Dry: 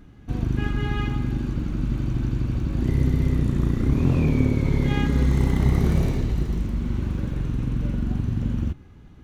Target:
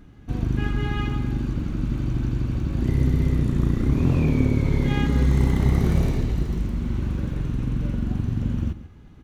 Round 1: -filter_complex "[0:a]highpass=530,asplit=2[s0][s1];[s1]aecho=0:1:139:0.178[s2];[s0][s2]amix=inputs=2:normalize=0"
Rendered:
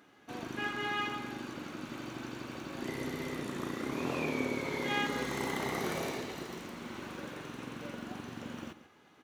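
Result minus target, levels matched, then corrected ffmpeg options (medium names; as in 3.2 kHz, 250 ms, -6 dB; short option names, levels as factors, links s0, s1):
500 Hz band +8.0 dB
-filter_complex "[0:a]asplit=2[s0][s1];[s1]aecho=0:1:139:0.178[s2];[s0][s2]amix=inputs=2:normalize=0"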